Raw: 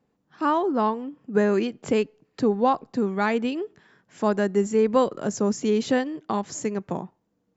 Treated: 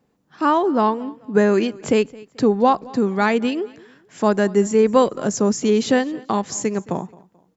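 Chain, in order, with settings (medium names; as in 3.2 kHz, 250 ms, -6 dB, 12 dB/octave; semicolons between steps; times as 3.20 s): treble shelf 4.9 kHz +4 dB; on a send: feedback delay 218 ms, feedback 34%, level -22.5 dB; on the sum: trim +5 dB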